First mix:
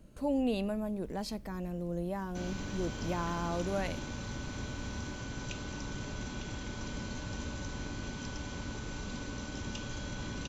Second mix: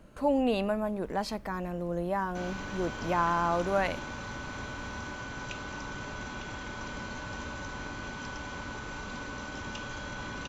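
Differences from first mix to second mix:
background −3.5 dB
master: add parametric band 1,200 Hz +11.5 dB 2.5 octaves

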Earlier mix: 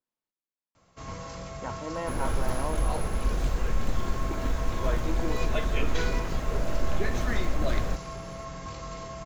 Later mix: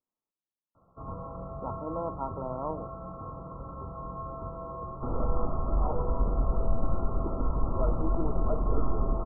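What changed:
second sound: entry +2.95 s
master: add linear-phase brick-wall low-pass 1,400 Hz

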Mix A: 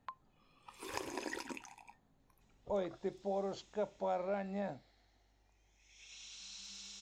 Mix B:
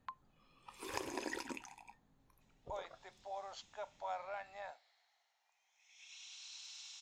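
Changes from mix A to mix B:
speech: add high-pass filter 770 Hz 24 dB per octave
second sound: add Chebyshev high-pass with heavy ripple 680 Hz, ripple 3 dB

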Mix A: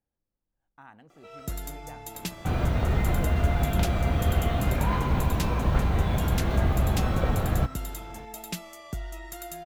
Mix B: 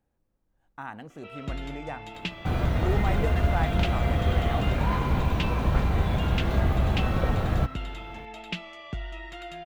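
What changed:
speech +11.5 dB
first sound: add low-pass with resonance 2,900 Hz, resonance Q 2.7

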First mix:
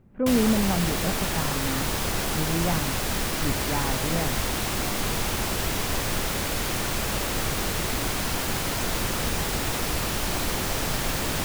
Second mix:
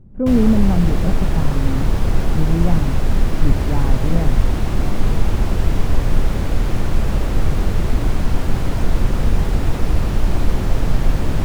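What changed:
speech: remove low-pass with resonance 2,400 Hz, resonance Q 1.5
master: add spectral tilt −3.5 dB per octave

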